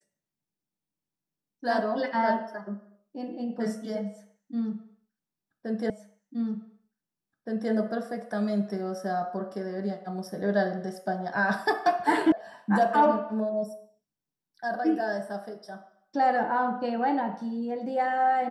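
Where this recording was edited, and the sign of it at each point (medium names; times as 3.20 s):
5.90 s: repeat of the last 1.82 s
12.32 s: sound stops dead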